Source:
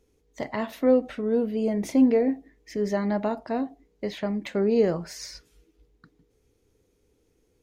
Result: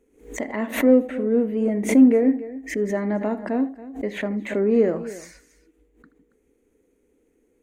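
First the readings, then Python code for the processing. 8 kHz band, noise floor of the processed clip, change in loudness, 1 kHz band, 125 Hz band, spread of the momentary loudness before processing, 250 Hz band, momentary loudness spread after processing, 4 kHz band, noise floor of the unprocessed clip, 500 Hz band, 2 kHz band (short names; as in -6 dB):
+5.0 dB, -66 dBFS, +4.5 dB, -0.5 dB, +1.0 dB, 15 LU, +5.5 dB, 15 LU, n/a, -68 dBFS, +3.0 dB, +7.0 dB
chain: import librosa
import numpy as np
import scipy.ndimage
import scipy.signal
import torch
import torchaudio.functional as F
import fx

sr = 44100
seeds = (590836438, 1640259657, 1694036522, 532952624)

p1 = fx.peak_eq(x, sr, hz=5200.0, db=-11.0, octaves=0.34)
p2 = fx.echo_multitap(p1, sr, ms=(78, 278), db=(-16.5, -17.0))
p3 = 10.0 ** (-27.0 / 20.0) * np.tanh(p2 / 10.0 ** (-27.0 / 20.0))
p4 = p2 + (p3 * 10.0 ** (-11.0 / 20.0))
p5 = fx.graphic_eq_10(p4, sr, hz=(125, 250, 500, 2000, 4000, 8000), db=(-11, 12, 5, 8, -7, 6))
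p6 = fx.pre_swell(p5, sr, db_per_s=130.0)
y = p6 * 10.0 ** (-5.5 / 20.0)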